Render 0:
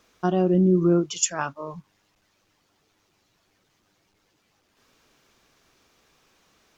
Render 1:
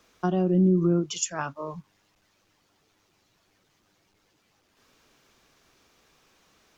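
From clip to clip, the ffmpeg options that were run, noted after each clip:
-filter_complex "[0:a]acrossover=split=240[s0][s1];[s1]acompressor=threshold=0.0562:ratio=6[s2];[s0][s2]amix=inputs=2:normalize=0"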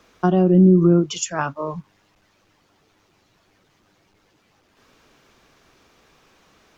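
-af "highshelf=f=4000:g=-7.5,volume=2.51"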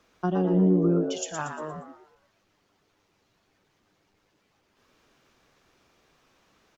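-filter_complex "[0:a]asplit=6[s0][s1][s2][s3][s4][s5];[s1]adelay=117,afreqshift=100,volume=0.447[s6];[s2]adelay=234,afreqshift=200,volume=0.174[s7];[s3]adelay=351,afreqshift=300,volume=0.0676[s8];[s4]adelay=468,afreqshift=400,volume=0.0266[s9];[s5]adelay=585,afreqshift=500,volume=0.0104[s10];[s0][s6][s7][s8][s9][s10]amix=inputs=6:normalize=0,volume=0.355"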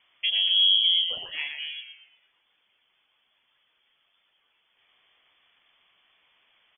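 -af "lowpass=f=3000:t=q:w=0.5098,lowpass=f=3000:t=q:w=0.6013,lowpass=f=3000:t=q:w=0.9,lowpass=f=3000:t=q:w=2.563,afreqshift=-3500"

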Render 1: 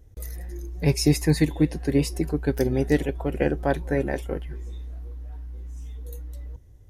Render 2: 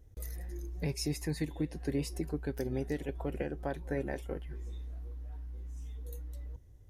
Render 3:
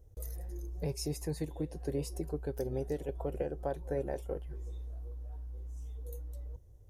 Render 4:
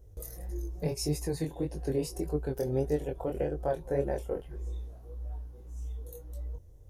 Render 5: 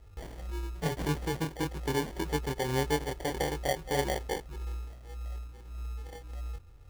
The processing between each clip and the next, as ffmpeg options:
-af "alimiter=limit=0.133:level=0:latency=1:release=325,volume=0.501"
-af "equalizer=f=250:t=o:w=1:g=-7,equalizer=f=500:t=o:w=1:g=5,equalizer=f=2000:t=o:w=1:g=-10,equalizer=f=4000:t=o:w=1:g=-4"
-af "flanger=delay=20:depth=4.7:speed=1.7,volume=2.37"
-af "acrusher=samples=34:mix=1:aa=0.000001"

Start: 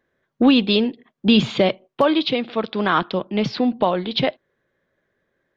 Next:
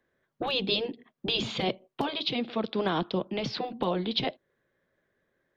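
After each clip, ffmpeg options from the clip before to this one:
-filter_complex "[0:a]afftfilt=real='re*lt(hypot(re,im),0.794)':imag='im*lt(hypot(re,im),0.794)':win_size=1024:overlap=0.75,acrossover=split=310|890|2800[s0][s1][s2][s3];[s2]acompressor=threshold=0.0126:ratio=6[s4];[s0][s1][s4][s3]amix=inputs=4:normalize=0,volume=0.631"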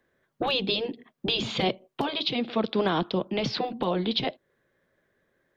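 -af "alimiter=limit=0.119:level=0:latency=1:release=264,volume=1.58"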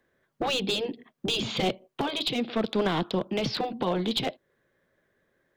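-af "aeval=exprs='clip(val(0),-1,0.0668)':c=same"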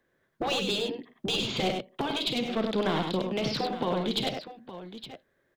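-af "aecho=1:1:52|99|866:0.266|0.531|0.224,volume=0.794"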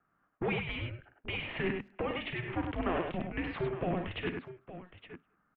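-filter_complex "[0:a]highpass=f=530:t=q:w=0.5412,highpass=f=530:t=q:w=1.307,lowpass=f=2700:t=q:w=0.5176,lowpass=f=2700:t=q:w=0.7071,lowpass=f=2700:t=q:w=1.932,afreqshift=-360,asplit=2[s0][s1];[s1]adelay=200,highpass=300,lowpass=3400,asoftclip=type=hard:threshold=0.0316,volume=0.0355[s2];[s0][s2]amix=inputs=2:normalize=0"

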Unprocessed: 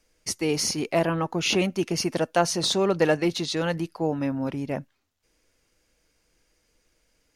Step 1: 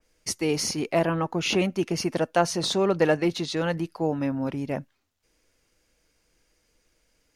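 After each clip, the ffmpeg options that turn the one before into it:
-af "adynamicequalizer=threshold=0.00891:dfrequency=2900:dqfactor=0.7:tfrequency=2900:tqfactor=0.7:attack=5:release=100:ratio=0.375:range=2:mode=cutabove:tftype=highshelf"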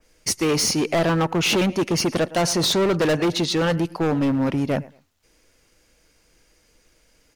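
-af "aecho=1:1:110|220:0.0708|0.017,volume=18.8,asoftclip=hard,volume=0.0531,volume=2.66"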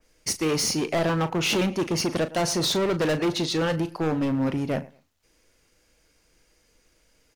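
-filter_complex "[0:a]asplit=2[s0][s1];[s1]adelay=38,volume=0.251[s2];[s0][s2]amix=inputs=2:normalize=0,volume=0.631"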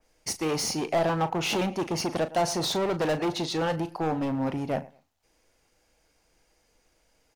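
-af "equalizer=f=780:t=o:w=0.65:g=9,volume=0.596"

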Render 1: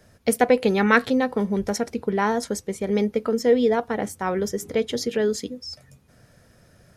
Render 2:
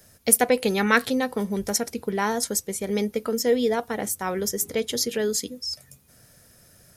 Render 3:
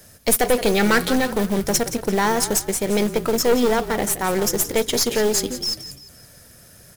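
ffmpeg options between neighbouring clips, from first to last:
-af "aemphasis=mode=production:type=75fm,volume=0.75"
-filter_complex "[0:a]acrusher=bits=3:mode=log:mix=0:aa=0.000001,aeval=exprs='(tanh(11.2*val(0)+0.5)-tanh(0.5))/11.2':c=same,asplit=5[s0][s1][s2][s3][s4];[s1]adelay=172,afreqshift=-34,volume=0.237[s5];[s2]adelay=344,afreqshift=-68,volume=0.0923[s6];[s3]adelay=516,afreqshift=-102,volume=0.0359[s7];[s4]adelay=688,afreqshift=-136,volume=0.0141[s8];[s0][s5][s6][s7][s8]amix=inputs=5:normalize=0,volume=2.66"

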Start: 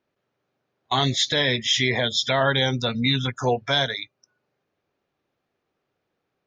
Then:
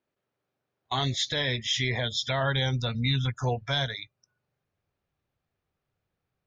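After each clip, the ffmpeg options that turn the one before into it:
-af "asubboost=boost=6.5:cutoff=120,volume=0.473"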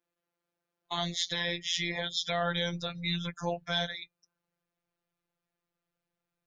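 -af "bass=f=250:g=-4,treble=f=4000:g=1,afftfilt=real='hypot(re,im)*cos(PI*b)':imag='0':win_size=1024:overlap=0.75"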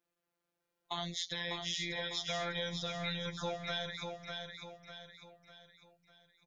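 -filter_complex "[0:a]acompressor=threshold=0.0141:ratio=2.5,asplit=2[s0][s1];[s1]aecho=0:1:600|1200|1800|2400|3000:0.562|0.242|0.104|0.0447|0.0192[s2];[s0][s2]amix=inputs=2:normalize=0"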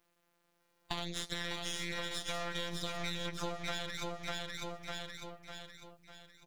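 -af "acompressor=threshold=0.00501:ratio=4,aeval=exprs='max(val(0),0)':c=same,volume=3.98"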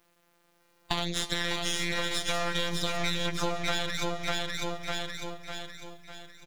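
-af "aecho=1:1:316|632|948|1264|1580|1896:0.15|0.0883|0.0521|0.0307|0.0181|0.0107,volume=2.66"

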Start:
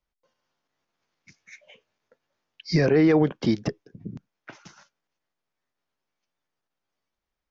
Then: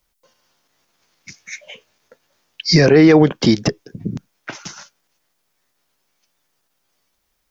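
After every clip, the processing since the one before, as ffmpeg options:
-filter_complex "[0:a]highshelf=f=4700:g=12,asplit=2[s0][s1];[s1]alimiter=limit=0.106:level=0:latency=1:release=211,volume=1.12[s2];[s0][s2]amix=inputs=2:normalize=0,volume=1.88"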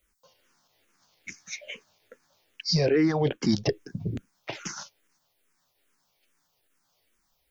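-filter_complex "[0:a]areverse,acompressor=threshold=0.126:ratio=6,areverse,asplit=2[s0][s1];[s1]afreqshift=-2.4[s2];[s0][s2]amix=inputs=2:normalize=1"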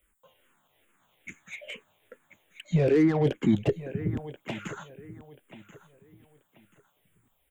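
-filter_complex "[0:a]asuperstop=centerf=5100:order=8:qfactor=1.4,aecho=1:1:1034|2068|3102:0.141|0.0396|0.0111,acrossover=split=570[s0][s1];[s1]asoftclip=type=tanh:threshold=0.02[s2];[s0][s2]amix=inputs=2:normalize=0,volume=1.19"

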